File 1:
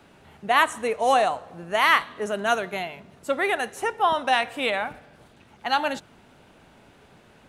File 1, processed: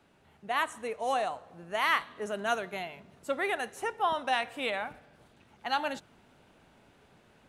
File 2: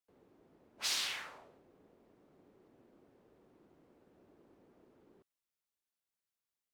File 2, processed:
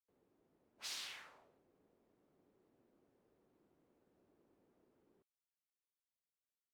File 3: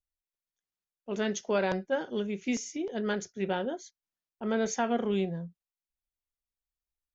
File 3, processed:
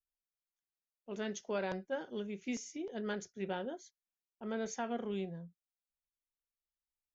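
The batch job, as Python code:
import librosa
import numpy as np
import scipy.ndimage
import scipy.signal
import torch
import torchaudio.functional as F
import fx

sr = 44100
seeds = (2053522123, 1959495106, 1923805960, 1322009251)

y = fx.rider(x, sr, range_db=4, speed_s=2.0)
y = y * librosa.db_to_amplitude(-8.5)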